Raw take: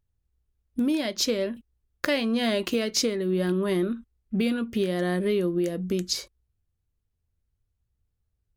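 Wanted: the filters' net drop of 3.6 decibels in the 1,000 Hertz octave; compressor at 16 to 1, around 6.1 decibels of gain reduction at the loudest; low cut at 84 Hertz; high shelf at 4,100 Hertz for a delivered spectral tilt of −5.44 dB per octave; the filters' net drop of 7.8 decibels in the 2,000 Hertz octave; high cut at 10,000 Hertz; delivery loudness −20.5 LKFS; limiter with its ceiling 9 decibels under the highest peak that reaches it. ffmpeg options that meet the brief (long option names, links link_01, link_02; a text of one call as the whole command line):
ffmpeg -i in.wav -af "highpass=84,lowpass=10000,equalizer=frequency=1000:width_type=o:gain=-3.5,equalizer=frequency=2000:width_type=o:gain=-7.5,highshelf=frequency=4100:gain=-5,acompressor=threshold=-27dB:ratio=16,volume=13dB,alimiter=limit=-12dB:level=0:latency=1" out.wav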